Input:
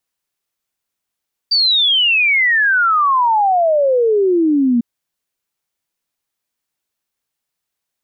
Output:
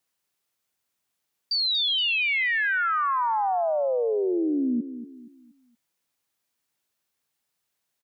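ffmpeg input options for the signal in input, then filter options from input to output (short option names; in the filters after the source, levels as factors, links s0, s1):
-f lavfi -i "aevalsrc='0.299*clip(min(t,3.3-t)/0.01,0,1)*sin(2*PI*4700*3.3/log(230/4700)*(exp(log(230/4700)*t/3.3)-1))':d=3.3:s=44100"
-filter_complex "[0:a]highpass=67,alimiter=limit=0.0841:level=0:latency=1:release=433,asplit=2[s0][s1];[s1]aecho=0:1:236|472|708|944:0.251|0.0929|0.0344|0.0127[s2];[s0][s2]amix=inputs=2:normalize=0"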